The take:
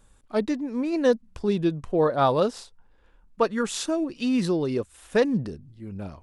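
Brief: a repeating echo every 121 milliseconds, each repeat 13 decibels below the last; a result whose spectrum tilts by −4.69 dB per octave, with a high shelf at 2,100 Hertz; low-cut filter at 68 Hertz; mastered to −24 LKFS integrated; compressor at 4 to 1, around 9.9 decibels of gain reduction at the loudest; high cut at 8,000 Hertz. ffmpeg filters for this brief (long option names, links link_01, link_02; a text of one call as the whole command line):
ffmpeg -i in.wav -af "highpass=68,lowpass=8000,highshelf=frequency=2100:gain=6.5,acompressor=threshold=-27dB:ratio=4,aecho=1:1:121|242|363:0.224|0.0493|0.0108,volume=7.5dB" out.wav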